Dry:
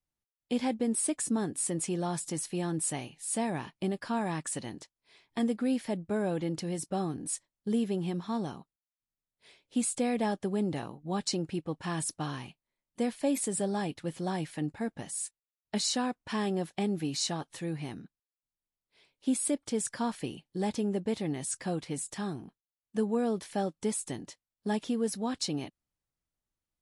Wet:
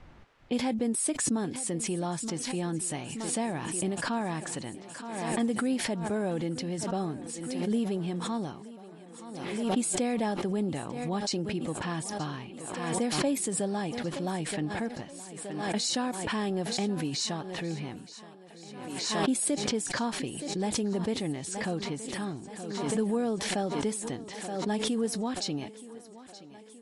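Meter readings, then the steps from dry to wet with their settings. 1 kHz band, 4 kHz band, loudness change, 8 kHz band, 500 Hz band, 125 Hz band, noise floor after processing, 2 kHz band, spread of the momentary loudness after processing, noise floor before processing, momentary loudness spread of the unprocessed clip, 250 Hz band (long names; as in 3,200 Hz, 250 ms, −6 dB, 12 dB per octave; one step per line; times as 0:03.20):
+2.5 dB, +4.5 dB, +1.5 dB, +1.5 dB, +1.5 dB, +1.5 dB, −49 dBFS, +5.0 dB, 12 LU, below −85 dBFS, 8 LU, +1.5 dB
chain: low-pass that shuts in the quiet parts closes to 2,000 Hz, open at −25.5 dBFS
feedback echo with a high-pass in the loop 923 ms, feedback 69%, high-pass 170 Hz, level −16.5 dB
background raised ahead of every attack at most 36 dB per second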